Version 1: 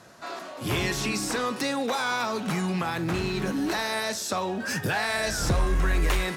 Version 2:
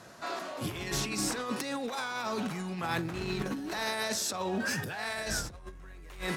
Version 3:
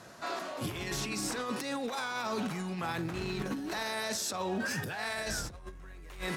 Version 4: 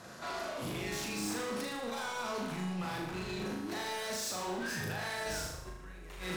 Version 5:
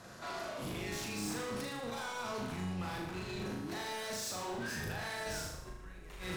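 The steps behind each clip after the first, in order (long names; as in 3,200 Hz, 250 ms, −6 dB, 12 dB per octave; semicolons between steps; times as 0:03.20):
compressor whose output falls as the input rises −30 dBFS, ratio −0.5; level −4 dB
brickwall limiter −25 dBFS, peak gain reduction 6.5 dB
soft clipping −37.5 dBFS, distortion −9 dB; on a send: flutter between parallel walls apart 6.6 metres, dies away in 0.74 s
sub-octave generator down 1 octave, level −5 dB; level −2.5 dB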